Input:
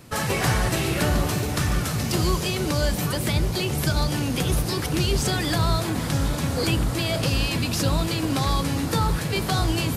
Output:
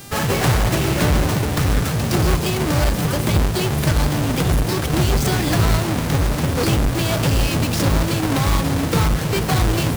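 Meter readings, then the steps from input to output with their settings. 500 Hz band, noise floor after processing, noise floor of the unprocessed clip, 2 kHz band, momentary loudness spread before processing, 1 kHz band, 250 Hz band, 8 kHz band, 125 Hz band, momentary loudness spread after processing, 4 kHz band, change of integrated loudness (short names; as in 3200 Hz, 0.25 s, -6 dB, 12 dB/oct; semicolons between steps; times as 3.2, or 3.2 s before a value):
+5.0 dB, -22 dBFS, -28 dBFS, +4.0 dB, 2 LU, +4.5 dB, +5.0 dB, +3.0 dB, +5.5 dB, 2 LU, +1.5 dB, +5.0 dB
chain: half-waves squared off; buzz 400 Hz, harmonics 40, -41 dBFS -1 dB/oct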